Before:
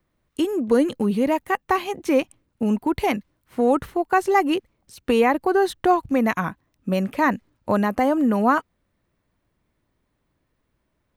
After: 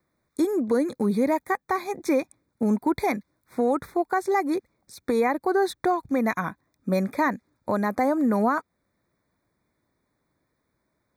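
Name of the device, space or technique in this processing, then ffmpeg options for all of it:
PA system with an anti-feedback notch: -af "highpass=f=140:p=1,asuperstop=centerf=2900:order=20:qfactor=3.1,alimiter=limit=0.2:level=0:latency=1:release=325"

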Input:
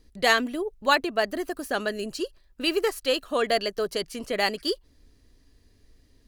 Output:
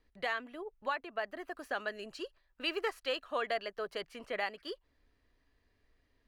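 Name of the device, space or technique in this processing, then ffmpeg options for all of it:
DJ mixer with the lows and highs turned down: -filter_complex "[0:a]acrossover=split=600 2900:gain=0.251 1 0.126[s0][s1][s2];[s0][s1][s2]amix=inputs=3:normalize=0,alimiter=limit=0.0944:level=0:latency=1:release=441,asettb=1/sr,asplit=3[s3][s4][s5];[s3]atrim=end=1.524[s6];[s4]atrim=start=1.52:end=3.54,asetpts=PTS-STARTPTS,afade=t=in:d=0.004:c=qsin,afade=t=out:st=2.016:d=0.004:c=qsin,equalizer=f=5900:t=o:w=1.4:g=4.5[s7];[s5]atrim=start=3.536[s8];[s6][s7]acrossfade=d=0.004:c1=hsin:c2=qsin[s9];[s9][s8]acrossfade=d=0.004:c1=qsin:c2=hsin,volume=0.668"

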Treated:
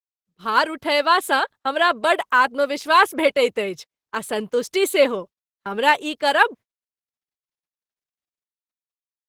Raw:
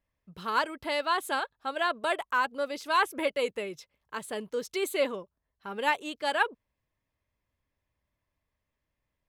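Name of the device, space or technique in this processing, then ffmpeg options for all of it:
video call: -filter_complex "[0:a]asettb=1/sr,asplit=3[s0][s1][s2];[s0]atrim=end=2.964[s3];[s1]atrim=start=2.96:end=4.51,asetpts=PTS-STARTPTS,afade=t=in:d=0.004:c=qsin,afade=t=out:st=1.546:d=0.004:c=qsin,equalizer=f=100:w=3:g=3.5[s4];[s2]atrim=start=4.506[s5];[s3][s4]acrossfade=d=0.004:c1=hsin:c2=qsin[s6];[s6][s5]acrossfade=d=0.004:c1=qsin:c2=hsin,highpass=100,dynaudnorm=f=140:g=7:m=2,agate=range=0.0316:threshold=0.01:ratio=16:detection=peak,volume=1.78" -ar 48000 -c:a libopus -b:a 16k

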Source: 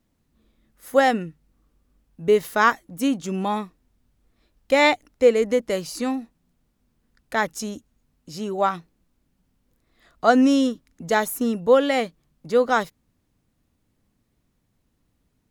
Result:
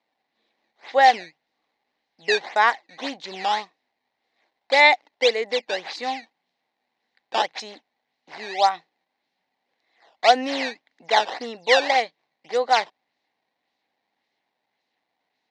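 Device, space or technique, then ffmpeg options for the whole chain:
circuit-bent sampling toy: -af "acrusher=samples=12:mix=1:aa=0.000001:lfo=1:lforange=19.2:lforate=1.8,highpass=590,equalizer=f=790:t=q:w=4:g=9,equalizer=f=1300:t=q:w=4:g=-9,equalizer=f=2000:t=q:w=4:g=8,equalizer=f=4000:t=q:w=4:g=7,lowpass=f=5400:w=0.5412,lowpass=f=5400:w=1.3066"

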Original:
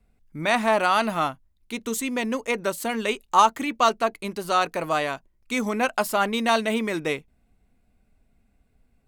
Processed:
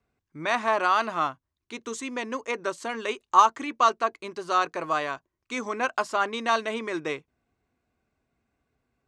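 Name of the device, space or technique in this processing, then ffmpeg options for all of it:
car door speaker: -af "highpass=97,equalizer=f=200:t=q:w=4:g=-9,equalizer=f=360:t=q:w=4:g=5,equalizer=f=1100:t=q:w=4:g=8,equalizer=f=1600:t=q:w=4:g=4,equalizer=f=6100:t=q:w=4:g=3,lowpass=f=7600:w=0.5412,lowpass=f=7600:w=1.3066,volume=0.531"

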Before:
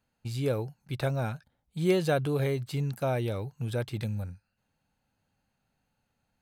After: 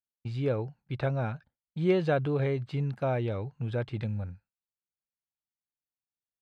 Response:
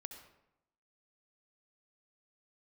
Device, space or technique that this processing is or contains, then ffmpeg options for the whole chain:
hearing-loss simulation: -af "lowpass=2800,agate=range=0.0224:threshold=0.00501:ratio=3:detection=peak"

